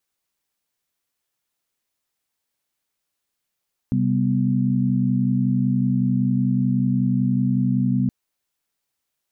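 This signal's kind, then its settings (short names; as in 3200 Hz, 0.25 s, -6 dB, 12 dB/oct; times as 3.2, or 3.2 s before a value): chord C3/G3/B3 sine, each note -21.5 dBFS 4.17 s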